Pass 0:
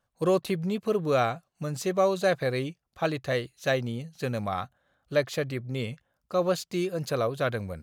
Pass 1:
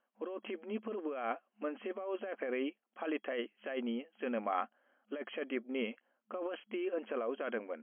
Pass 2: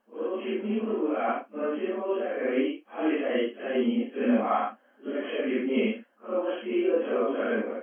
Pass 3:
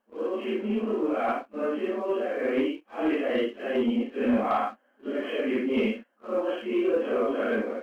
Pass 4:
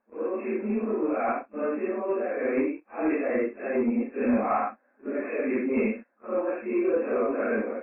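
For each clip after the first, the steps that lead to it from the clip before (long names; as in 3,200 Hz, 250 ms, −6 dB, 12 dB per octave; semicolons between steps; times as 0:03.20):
compressor whose output falls as the input rises −30 dBFS, ratio −1; brick-wall band-pass 210–3,300 Hz; level −5 dB
random phases in long frames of 200 ms; low-shelf EQ 330 Hz +8.5 dB; level +8 dB
leveller curve on the samples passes 1; level −2.5 dB
linear-phase brick-wall low-pass 2,700 Hz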